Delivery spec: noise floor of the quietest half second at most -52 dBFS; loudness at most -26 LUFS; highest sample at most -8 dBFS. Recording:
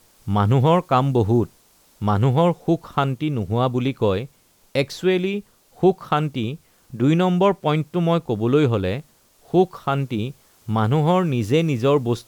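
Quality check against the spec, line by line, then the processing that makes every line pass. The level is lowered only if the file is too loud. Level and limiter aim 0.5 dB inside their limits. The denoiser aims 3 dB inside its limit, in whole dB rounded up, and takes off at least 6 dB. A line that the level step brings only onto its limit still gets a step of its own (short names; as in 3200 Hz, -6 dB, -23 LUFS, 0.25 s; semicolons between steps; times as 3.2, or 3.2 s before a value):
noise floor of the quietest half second -56 dBFS: OK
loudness -21.0 LUFS: fail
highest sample -5.5 dBFS: fail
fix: gain -5.5 dB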